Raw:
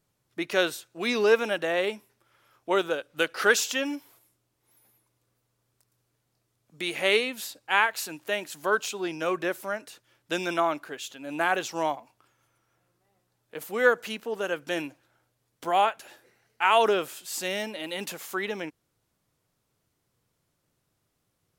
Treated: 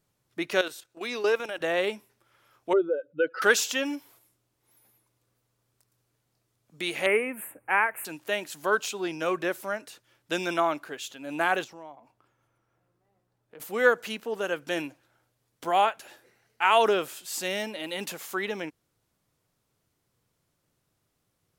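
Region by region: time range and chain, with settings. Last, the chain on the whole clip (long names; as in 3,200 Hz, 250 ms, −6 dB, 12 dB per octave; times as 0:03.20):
0:00.61–0:01.61: parametric band 180 Hz −11 dB 0.71 octaves + output level in coarse steps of 11 dB
0:02.73–0:03.42: expanding power law on the bin magnitudes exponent 2.4 + parametric band 280 Hz +3.5 dB 1.4 octaves
0:07.06–0:08.05: elliptic band-stop filter 2,300–9,100 Hz, stop band 60 dB + multiband upward and downward compressor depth 40%
0:11.64–0:13.60: high-shelf EQ 2,100 Hz −11 dB + downward compressor 2.5 to 1, threshold −48 dBFS
whole clip: no processing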